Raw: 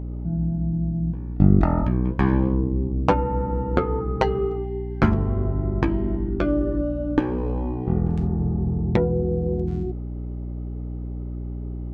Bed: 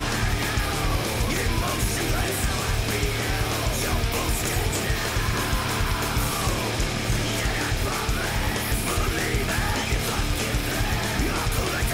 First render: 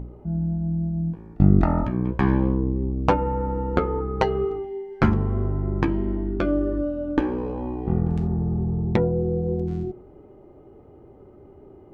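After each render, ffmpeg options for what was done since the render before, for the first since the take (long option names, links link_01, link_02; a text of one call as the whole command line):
ffmpeg -i in.wav -af "bandreject=frequency=60:width_type=h:width=4,bandreject=frequency=120:width_type=h:width=4,bandreject=frequency=180:width_type=h:width=4,bandreject=frequency=240:width_type=h:width=4,bandreject=frequency=300:width_type=h:width=4,bandreject=frequency=360:width_type=h:width=4,bandreject=frequency=420:width_type=h:width=4,bandreject=frequency=480:width_type=h:width=4,bandreject=frequency=540:width_type=h:width=4,bandreject=frequency=600:width_type=h:width=4,bandreject=frequency=660:width_type=h:width=4" out.wav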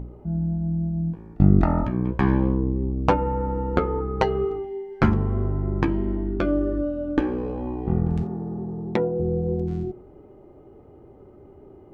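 ffmpeg -i in.wav -filter_complex "[0:a]asettb=1/sr,asplit=3[link_01][link_02][link_03];[link_01]atrim=end=6.674[link_04];[link_02]atrim=start=6.67:end=7.67,asetpts=PTS-STARTPTS,afade=type=in:duration=0.004:curve=qsin,afade=type=out:start_time=0.996:duration=0.004:curve=qsin,bandreject=frequency=950:width=7[link_05];[link_03]atrim=start=7.666[link_06];[link_04][link_05]acrossfade=duration=0.004:curve1=hsin:curve2=qsin[link_07];[link_07][link_06]acrossfade=duration=0.004:curve1=qsin:curve2=hsin,asettb=1/sr,asplit=3[link_08][link_09][link_10];[link_08]atrim=end=8.234[link_11];[link_09]atrim=start=8.23:end=9.2,asetpts=PTS-STARTPTS,afade=type=in:duration=0.004:curve=qsin,afade=type=out:start_time=0.966:duration=0.004:curve=qsin,highpass=220[link_12];[link_10]atrim=start=9.196[link_13];[link_11][link_12]acrossfade=duration=0.004:curve1=hsin:curve2=qsin[link_14];[link_14][link_13]acrossfade=duration=0.004:curve1=qsin:curve2=hsin" out.wav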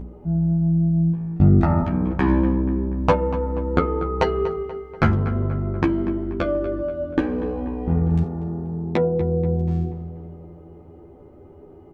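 ffmpeg -i in.wav -filter_complex "[0:a]asplit=2[link_01][link_02];[link_02]adelay=12,volume=-2.5dB[link_03];[link_01][link_03]amix=inputs=2:normalize=0,asplit=2[link_04][link_05];[link_05]adelay=241,lowpass=frequency=3000:poles=1,volume=-13dB,asplit=2[link_06][link_07];[link_07]adelay=241,lowpass=frequency=3000:poles=1,volume=0.55,asplit=2[link_08][link_09];[link_09]adelay=241,lowpass=frequency=3000:poles=1,volume=0.55,asplit=2[link_10][link_11];[link_11]adelay=241,lowpass=frequency=3000:poles=1,volume=0.55,asplit=2[link_12][link_13];[link_13]adelay=241,lowpass=frequency=3000:poles=1,volume=0.55,asplit=2[link_14][link_15];[link_15]adelay=241,lowpass=frequency=3000:poles=1,volume=0.55[link_16];[link_06][link_08][link_10][link_12][link_14][link_16]amix=inputs=6:normalize=0[link_17];[link_04][link_17]amix=inputs=2:normalize=0" out.wav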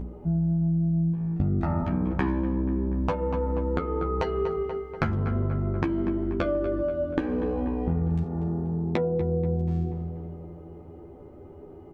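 ffmpeg -i in.wav -af "alimiter=limit=-8dB:level=0:latency=1:release=432,acompressor=threshold=-22dB:ratio=6" out.wav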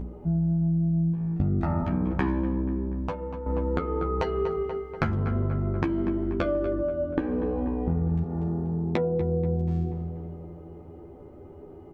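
ffmpeg -i in.wav -filter_complex "[0:a]asettb=1/sr,asplit=3[link_01][link_02][link_03];[link_01]atrim=end=6.734[link_04];[link_02]atrim=start=6.73:end=8.29,asetpts=PTS-STARTPTS,afade=type=in:duration=0.004:curve=qsin,afade=type=out:start_time=1.556:duration=0.004:curve=qsin,highshelf=frequency=3000:gain=-11.5[link_05];[link_03]atrim=start=8.286[link_06];[link_04][link_05]acrossfade=duration=0.004:curve1=hsin:curve2=qsin[link_07];[link_07][link_06]acrossfade=duration=0.004:curve1=qsin:curve2=hsin,asplit=2[link_08][link_09];[link_08]atrim=end=3.46,asetpts=PTS-STARTPTS,afade=type=out:start_time=2.45:duration=1.01:silence=0.334965[link_10];[link_09]atrim=start=3.46,asetpts=PTS-STARTPTS,afade=type=in:duration=0.004:curve=hsin:silence=0.334965[link_11];[link_10][link_11]concat=n=2:v=0:a=1" out.wav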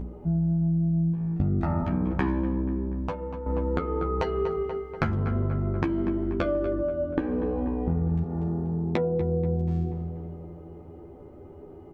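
ffmpeg -i in.wav -af anull out.wav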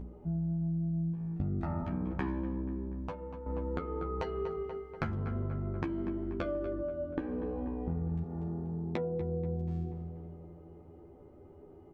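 ffmpeg -i in.wav -af "volume=-8.5dB" out.wav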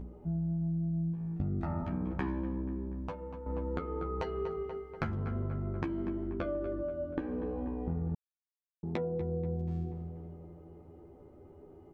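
ffmpeg -i in.wav -filter_complex "[0:a]asettb=1/sr,asplit=3[link_01][link_02][link_03];[link_01]atrim=end=6.274[link_04];[link_02]atrim=start=6.27:end=6.7,asetpts=PTS-STARTPTS,afade=type=in:duration=0.004:curve=qsin,afade=type=out:start_time=0.426:duration=0.004:curve=qsin,lowpass=frequency=2700:poles=1[link_05];[link_03]atrim=start=6.696[link_06];[link_04][link_05]acrossfade=duration=0.004:curve1=hsin:curve2=qsin[link_07];[link_07][link_06]acrossfade=duration=0.004:curve1=qsin:curve2=hsin,asplit=3[link_08][link_09][link_10];[link_08]atrim=end=8.15,asetpts=PTS-STARTPTS,afade=type=out:start_time=8.146:duration=0.004:curve=hsin[link_11];[link_09]atrim=start=8.15:end=8.83,asetpts=PTS-STARTPTS,volume=0[link_12];[link_10]atrim=start=8.83,asetpts=PTS-STARTPTS,afade=type=in:duration=0.004:curve=hsin[link_13];[link_11][link_12][link_13]concat=n=3:v=0:a=1" out.wav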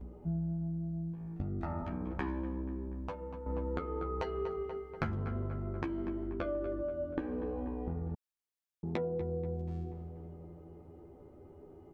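ffmpeg -i in.wav -af "adynamicequalizer=threshold=0.00447:dfrequency=150:dqfactor=1.1:tfrequency=150:tqfactor=1.1:attack=5:release=100:ratio=0.375:range=3.5:mode=cutabove:tftype=bell" out.wav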